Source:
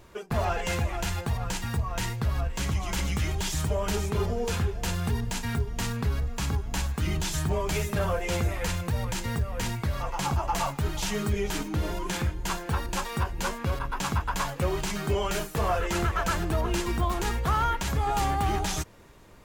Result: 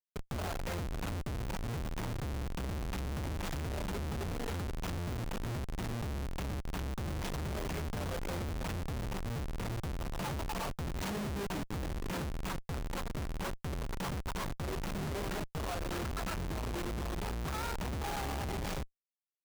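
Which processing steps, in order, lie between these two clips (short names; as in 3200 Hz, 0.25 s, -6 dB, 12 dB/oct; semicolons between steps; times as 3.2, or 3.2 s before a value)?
11.01–11.73 HPF 65 Hz 24 dB/oct; Schmitt trigger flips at -29 dBFS; gain -8 dB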